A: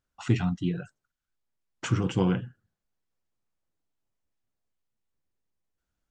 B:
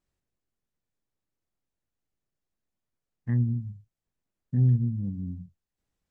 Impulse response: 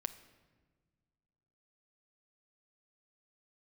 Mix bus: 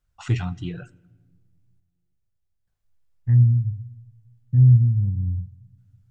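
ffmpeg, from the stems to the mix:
-filter_complex "[0:a]equalizer=f=100:w=0.63:g=-11.5,volume=0.75,asplit=3[s0][s1][s2];[s0]atrim=end=1.8,asetpts=PTS-STARTPTS,afade=t=out:st=1.796:d=0.004:c=hsin[s3];[s1]atrim=start=1.8:end=2.67,asetpts=PTS-STARTPTS,volume=0[s4];[s2]atrim=start=2.67,asetpts=PTS-STARTPTS,afade=t=in:d=0.004:c=hsin[s5];[s3][s4][s5]concat=n=3:v=0:a=1,asplit=2[s6][s7];[s7]volume=0.562[s8];[1:a]bandreject=f=1100:w=12,volume=0.531,asplit=2[s9][s10];[s10]volume=0.398[s11];[2:a]atrim=start_sample=2205[s12];[s8][s11]amix=inputs=2:normalize=0[s13];[s13][s12]afir=irnorm=-1:irlink=0[s14];[s6][s9][s14]amix=inputs=3:normalize=0,lowshelf=f=150:t=q:w=1.5:g=13.5"

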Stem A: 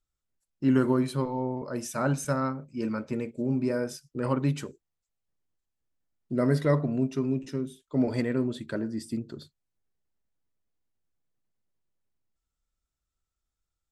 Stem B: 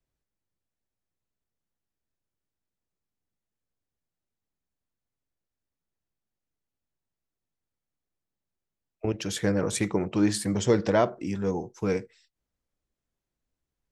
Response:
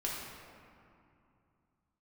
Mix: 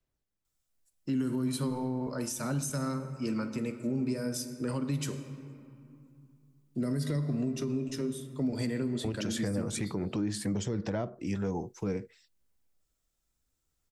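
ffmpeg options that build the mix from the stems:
-filter_complex "[0:a]highshelf=f=3700:g=11,acrossover=split=320|3000[s0][s1][s2];[s1]acompressor=threshold=0.02:ratio=6[s3];[s0][s3][s2]amix=inputs=3:normalize=0,adelay=450,volume=0.708,asplit=2[s4][s5];[s5]volume=0.316[s6];[1:a]aphaser=in_gain=1:out_gain=1:delay=1.7:decay=0.22:speed=0.58:type=sinusoidal,volume=0.891[s7];[2:a]atrim=start_sample=2205[s8];[s6][s8]afir=irnorm=-1:irlink=0[s9];[s4][s7][s9]amix=inputs=3:normalize=0,acrossover=split=310[s10][s11];[s11]acompressor=threshold=0.0251:ratio=6[s12];[s10][s12]amix=inputs=2:normalize=0,alimiter=limit=0.0708:level=0:latency=1:release=143"

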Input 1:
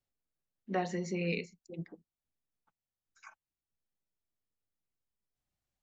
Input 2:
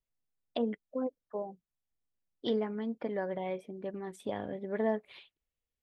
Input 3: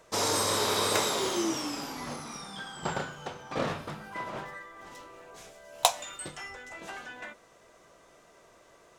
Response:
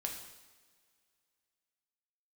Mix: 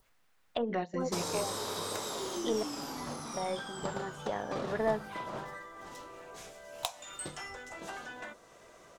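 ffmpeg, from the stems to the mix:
-filter_complex "[0:a]volume=0.891[s0];[1:a]equalizer=f=1400:w=0.42:g=14,volume=0.473,asplit=3[s1][s2][s3];[s1]atrim=end=2.63,asetpts=PTS-STARTPTS,afade=t=out:st=2.626:d=0.004:c=hsin[s4];[s2]atrim=start=2.63:end=3.34,asetpts=PTS-STARTPTS,volume=0[s5];[s3]atrim=start=3.34,asetpts=PTS-STARTPTS,afade=t=in:d=0.004:c=hsin[s6];[s4][s5][s6]concat=n=3:v=0:a=1,asplit=2[s7][s8];[2:a]acompressor=threshold=0.0158:ratio=4,adelay=1000,volume=1.12[s9];[s8]apad=whole_len=256740[s10];[s0][s10]sidechaingate=range=0.2:threshold=0.00316:ratio=16:detection=peak[s11];[s11][s7][s9]amix=inputs=3:normalize=0,adynamicequalizer=threshold=0.002:dfrequency=2300:dqfactor=1.5:tfrequency=2300:tqfactor=1.5:attack=5:release=100:ratio=0.375:range=3:mode=cutabove:tftype=bell,acompressor=mode=upward:threshold=0.00251:ratio=2.5,aeval=exprs='0.237*(cos(1*acos(clip(val(0)/0.237,-1,1)))-cos(1*PI/2))+0.00596*(cos(6*acos(clip(val(0)/0.237,-1,1)))-cos(6*PI/2))':c=same"

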